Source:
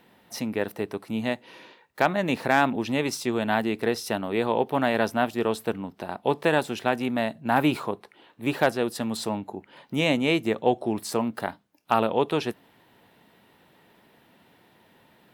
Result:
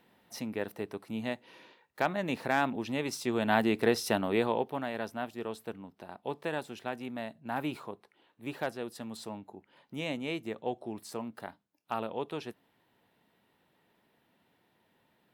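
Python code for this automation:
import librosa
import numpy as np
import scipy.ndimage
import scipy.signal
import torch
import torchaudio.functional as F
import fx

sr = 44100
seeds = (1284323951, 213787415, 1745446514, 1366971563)

y = fx.gain(x, sr, db=fx.line((3.05, -7.5), (3.64, -1.0), (4.31, -1.0), (4.85, -12.5)))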